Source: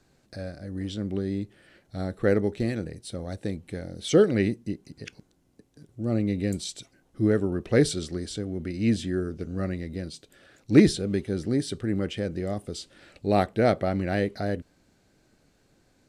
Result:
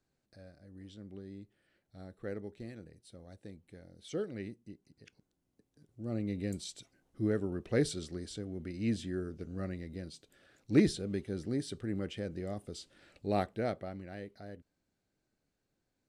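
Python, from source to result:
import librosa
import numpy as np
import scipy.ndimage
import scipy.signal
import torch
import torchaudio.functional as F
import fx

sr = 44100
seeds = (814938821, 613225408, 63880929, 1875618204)

y = fx.gain(x, sr, db=fx.line((4.99, -18.0), (6.37, -9.0), (13.38, -9.0), (14.1, -19.0)))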